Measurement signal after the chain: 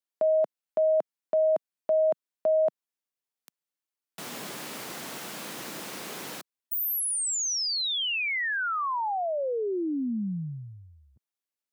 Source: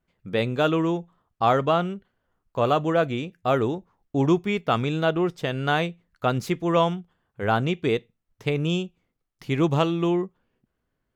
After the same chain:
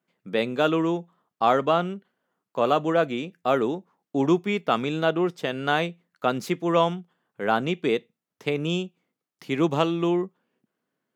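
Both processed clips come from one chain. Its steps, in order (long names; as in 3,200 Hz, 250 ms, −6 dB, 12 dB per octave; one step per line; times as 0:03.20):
high-pass filter 170 Hz 24 dB per octave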